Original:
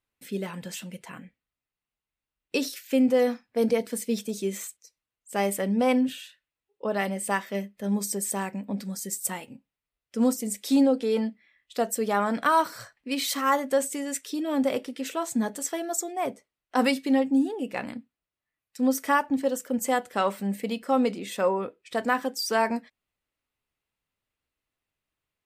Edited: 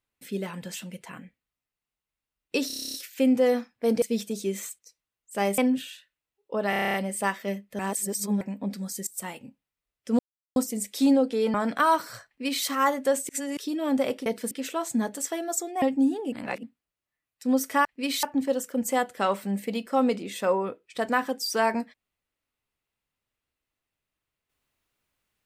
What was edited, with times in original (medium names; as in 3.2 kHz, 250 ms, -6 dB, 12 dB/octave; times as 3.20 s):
2.67 s: stutter 0.03 s, 10 plays
3.75–4.00 s: move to 14.92 s
5.56–5.89 s: delete
7.01 s: stutter 0.03 s, 9 plays
7.86–8.48 s: reverse
9.14–9.39 s: fade in, from -19.5 dB
10.26 s: insert silence 0.37 s
11.24–12.20 s: delete
12.93–13.31 s: copy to 19.19 s
13.95–14.23 s: reverse
16.23–17.16 s: delete
17.66–17.97 s: reverse